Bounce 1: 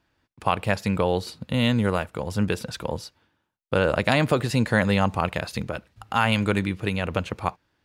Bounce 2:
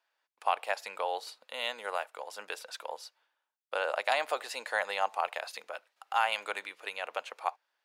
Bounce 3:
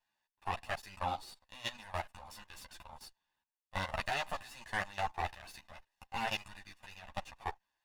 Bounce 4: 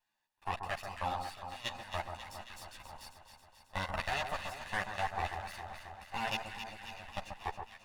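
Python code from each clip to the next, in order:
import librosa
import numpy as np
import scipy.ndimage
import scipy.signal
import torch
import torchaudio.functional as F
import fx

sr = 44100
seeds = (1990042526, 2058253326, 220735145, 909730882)

y1 = fx.dynamic_eq(x, sr, hz=770.0, q=3.7, threshold_db=-38.0, ratio=4.0, max_db=5)
y1 = scipy.signal.sosfilt(scipy.signal.butter(4, 580.0, 'highpass', fs=sr, output='sos'), y1)
y1 = F.gain(torch.from_numpy(y1), -7.0).numpy()
y2 = fx.lower_of_two(y1, sr, delay_ms=1.1)
y2 = fx.level_steps(y2, sr, step_db=17)
y2 = fx.ensemble(y2, sr)
y2 = F.gain(torch.from_numpy(y2), 2.5).numpy()
y3 = fx.echo_alternate(y2, sr, ms=135, hz=1500.0, feedback_pct=79, wet_db=-6.0)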